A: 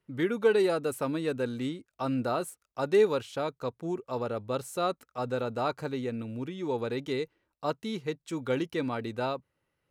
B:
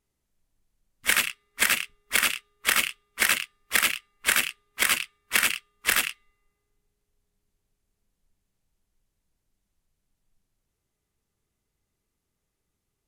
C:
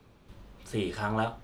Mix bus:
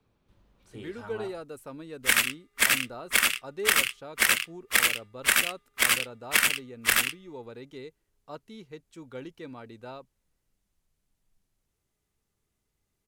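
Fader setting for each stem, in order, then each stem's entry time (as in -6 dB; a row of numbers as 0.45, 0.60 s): -11.0, 0.0, -13.0 dB; 0.65, 1.00, 0.00 s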